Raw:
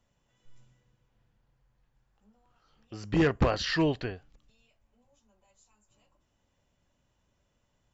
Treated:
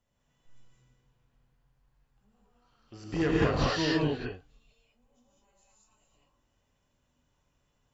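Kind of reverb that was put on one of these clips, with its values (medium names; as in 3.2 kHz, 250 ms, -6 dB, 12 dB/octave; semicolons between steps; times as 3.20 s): gated-style reverb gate 240 ms rising, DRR -5 dB; trim -6 dB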